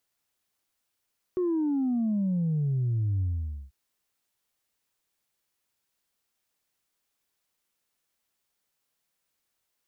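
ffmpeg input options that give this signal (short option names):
-f lavfi -i "aevalsrc='0.0631*clip((2.34-t)/0.5,0,1)*tanh(1*sin(2*PI*370*2.34/log(65/370)*(exp(log(65/370)*t/2.34)-1)))/tanh(1)':d=2.34:s=44100"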